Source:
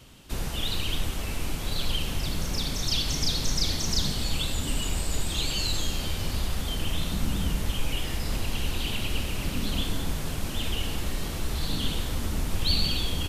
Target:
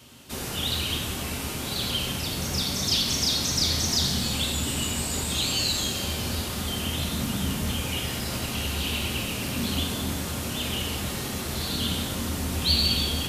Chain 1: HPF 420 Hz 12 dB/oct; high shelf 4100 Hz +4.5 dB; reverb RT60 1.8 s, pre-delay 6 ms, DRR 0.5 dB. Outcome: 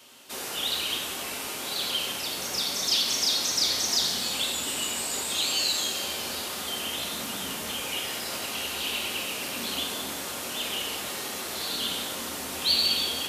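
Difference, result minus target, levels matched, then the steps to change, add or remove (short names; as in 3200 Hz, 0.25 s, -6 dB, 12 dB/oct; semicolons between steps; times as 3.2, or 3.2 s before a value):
125 Hz band -18.0 dB
change: HPF 110 Hz 12 dB/oct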